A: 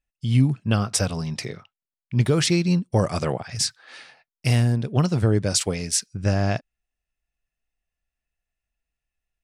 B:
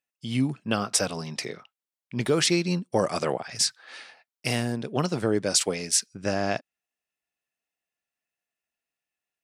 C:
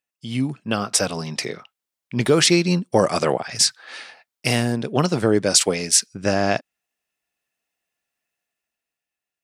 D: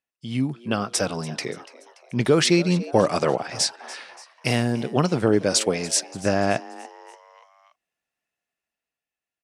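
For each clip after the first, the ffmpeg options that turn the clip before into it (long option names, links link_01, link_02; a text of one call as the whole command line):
ffmpeg -i in.wav -af "highpass=250" out.wav
ffmpeg -i in.wav -af "dynaudnorm=framelen=110:gausssize=17:maxgain=6dB,volume=1.5dB" out.wav
ffmpeg -i in.wav -filter_complex "[0:a]aemphasis=mode=reproduction:type=75fm,asplit=5[link_01][link_02][link_03][link_04][link_05];[link_02]adelay=288,afreqshift=120,volume=-18.5dB[link_06];[link_03]adelay=576,afreqshift=240,volume=-24.5dB[link_07];[link_04]adelay=864,afreqshift=360,volume=-30.5dB[link_08];[link_05]adelay=1152,afreqshift=480,volume=-36.6dB[link_09];[link_01][link_06][link_07][link_08][link_09]amix=inputs=5:normalize=0,crystalizer=i=1.5:c=0,volume=-2dB" out.wav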